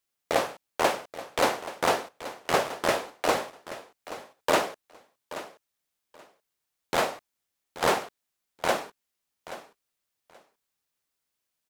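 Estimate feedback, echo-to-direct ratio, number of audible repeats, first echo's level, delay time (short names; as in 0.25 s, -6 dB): 18%, -14.5 dB, 2, -14.5 dB, 0.829 s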